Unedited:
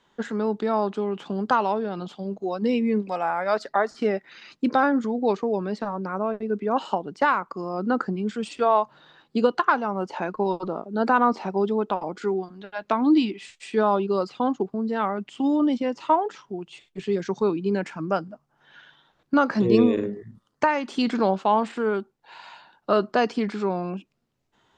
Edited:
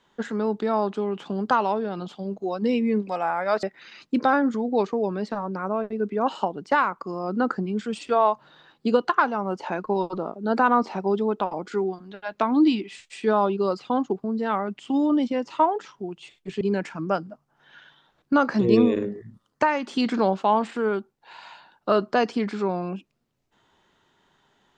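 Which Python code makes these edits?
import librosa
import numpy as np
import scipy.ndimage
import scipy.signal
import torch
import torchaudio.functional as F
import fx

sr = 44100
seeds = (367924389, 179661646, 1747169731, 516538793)

y = fx.edit(x, sr, fx.cut(start_s=3.63, length_s=0.5),
    fx.cut(start_s=17.11, length_s=0.51), tone=tone)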